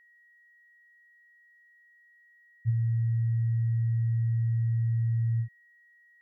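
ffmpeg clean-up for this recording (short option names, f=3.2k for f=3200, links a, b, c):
-af "bandreject=f=1.9k:w=30"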